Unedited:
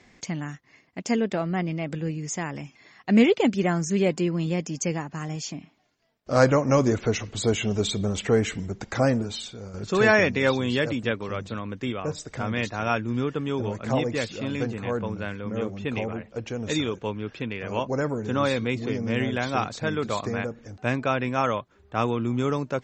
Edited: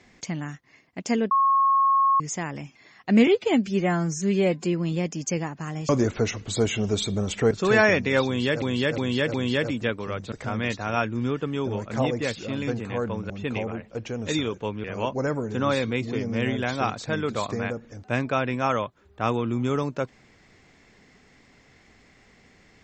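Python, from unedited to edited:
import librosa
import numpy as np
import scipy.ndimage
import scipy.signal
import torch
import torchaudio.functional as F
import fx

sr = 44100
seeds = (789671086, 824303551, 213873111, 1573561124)

y = fx.edit(x, sr, fx.bleep(start_s=1.31, length_s=0.89, hz=1090.0, db=-16.5),
    fx.stretch_span(start_s=3.27, length_s=0.92, factor=1.5),
    fx.cut(start_s=5.43, length_s=1.33),
    fx.cut(start_s=8.38, length_s=1.43),
    fx.repeat(start_s=10.56, length_s=0.36, count=4),
    fx.cut(start_s=11.54, length_s=0.71),
    fx.cut(start_s=15.23, length_s=0.48),
    fx.cut(start_s=17.25, length_s=0.33), tone=tone)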